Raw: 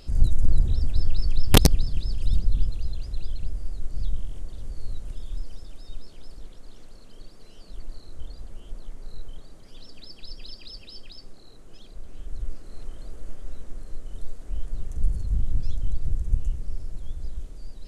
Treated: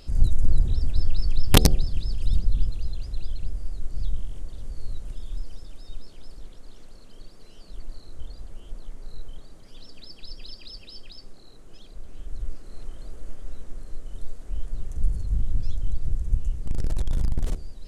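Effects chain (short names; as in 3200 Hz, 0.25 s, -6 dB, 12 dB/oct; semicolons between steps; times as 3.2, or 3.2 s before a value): 16.66–17.55 sample leveller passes 5; de-hum 74.73 Hz, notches 10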